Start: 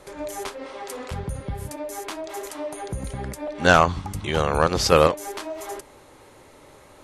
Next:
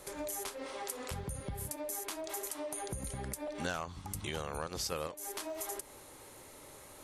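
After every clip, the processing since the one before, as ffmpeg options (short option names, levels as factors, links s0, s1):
-af "aemphasis=mode=production:type=50fm,acompressor=threshold=0.0282:ratio=5,volume=0.531"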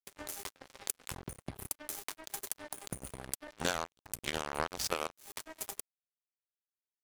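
-af "aeval=exprs='0.1*(cos(1*acos(clip(val(0)/0.1,-1,1)))-cos(1*PI/2))+0.0112*(cos(3*acos(clip(val(0)/0.1,-1,1)))-cos(3*PI/2))+0.000794*(cos(5*acos(clip(val(0)/0.1,-1,1)))-cos(5*PI/2))+0.00891*(cos(7*acos(clip(val(0)/0.1,-1,1)))-cos(7*PI/2))':c=same,aeval=exprs='sgn(val(0))*max(abs(val(0))-0.00188,0)':c=same,volume=2.99"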